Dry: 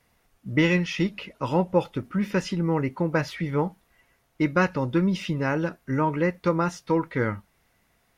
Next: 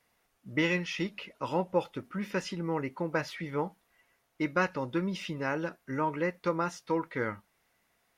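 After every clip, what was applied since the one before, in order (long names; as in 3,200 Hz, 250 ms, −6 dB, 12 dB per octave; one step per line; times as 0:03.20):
low-shelf EQ 190 Hz −11.5 dB
level −4.5 dB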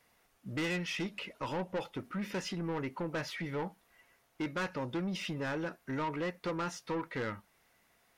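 in parallel at −1.5 dB: downward compressor, threshold −39 dBFS, peak gain reduction 16.5 dB
on the sum: soft clipping −28.5 dBFS, distortion −9 dB
level −2 dB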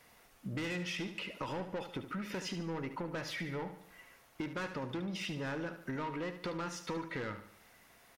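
downward compressor 6 to 1, threshold −45 dBFS, peak gain reduction 12 dB
repeating echo 73 ms, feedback 47%, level −10.5 dB
level +7 dB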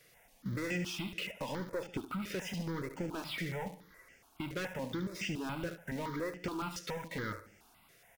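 in parallel at −8 dB: bit reduction 7 bits
on the sum: step-sequenced phaser 7.1 Hz 240–3,900 Hz
level +1 dB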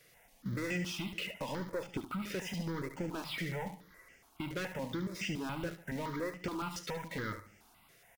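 single-tap delay 72 ms −14.5 dB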